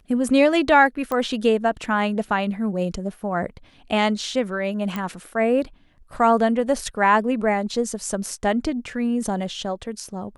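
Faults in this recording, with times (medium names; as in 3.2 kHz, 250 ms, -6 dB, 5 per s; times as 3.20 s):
1.12 s: pop -13 dBFS
4.96 s: pop -14 dBFS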